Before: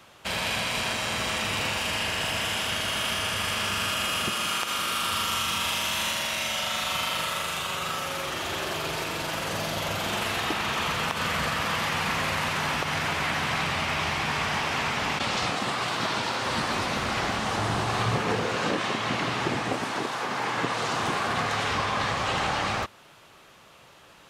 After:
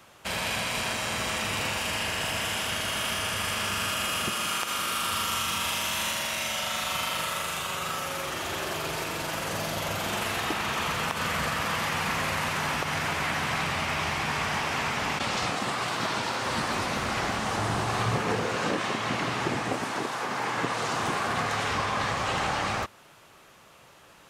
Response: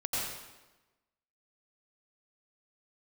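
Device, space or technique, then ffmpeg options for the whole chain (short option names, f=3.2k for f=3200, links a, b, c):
exciter from parts: -filter_complex "[0:a]asplit=2[a][b];[b]highpass=2.6k,asoftclip=type=tanh:threshold=-24.5dB,highpass=3.6k,volume=-7.5dB[c];[a][c]amix=inputs=2:normalize=0,volume=-1dB"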